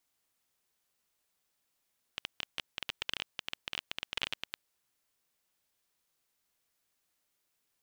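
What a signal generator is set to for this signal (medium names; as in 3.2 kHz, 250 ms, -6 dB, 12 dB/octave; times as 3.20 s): random clicks 18 per s -17 dBFS 2.37 s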